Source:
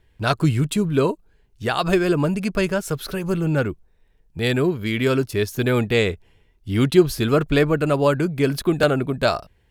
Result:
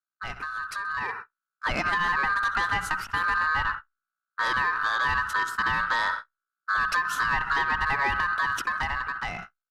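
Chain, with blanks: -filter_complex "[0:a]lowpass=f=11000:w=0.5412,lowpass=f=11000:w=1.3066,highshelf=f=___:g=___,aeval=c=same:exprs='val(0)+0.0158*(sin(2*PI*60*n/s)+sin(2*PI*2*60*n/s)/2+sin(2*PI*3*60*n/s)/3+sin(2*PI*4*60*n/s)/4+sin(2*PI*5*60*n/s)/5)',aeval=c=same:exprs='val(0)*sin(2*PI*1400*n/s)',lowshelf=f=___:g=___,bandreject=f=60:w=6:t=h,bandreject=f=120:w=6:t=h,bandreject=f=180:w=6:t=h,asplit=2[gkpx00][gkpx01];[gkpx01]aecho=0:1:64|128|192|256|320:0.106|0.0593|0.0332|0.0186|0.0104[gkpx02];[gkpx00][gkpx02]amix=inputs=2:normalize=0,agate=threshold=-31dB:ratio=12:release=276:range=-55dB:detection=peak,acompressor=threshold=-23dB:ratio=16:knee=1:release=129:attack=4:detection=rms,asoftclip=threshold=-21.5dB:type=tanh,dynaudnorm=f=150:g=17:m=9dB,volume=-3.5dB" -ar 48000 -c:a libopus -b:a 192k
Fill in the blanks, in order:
3000, -8.5, 95, 10.5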